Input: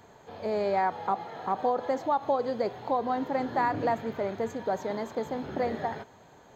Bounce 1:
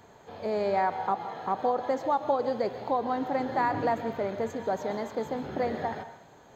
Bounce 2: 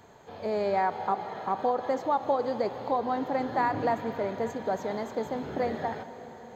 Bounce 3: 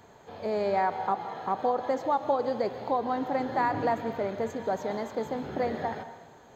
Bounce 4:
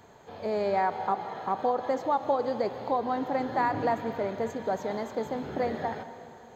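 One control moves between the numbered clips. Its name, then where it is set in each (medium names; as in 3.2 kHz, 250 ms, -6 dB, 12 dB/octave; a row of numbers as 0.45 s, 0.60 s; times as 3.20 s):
plate-style reverb, RT60: 0.55 s, 5.2 s, 1.1 s, 2.4 s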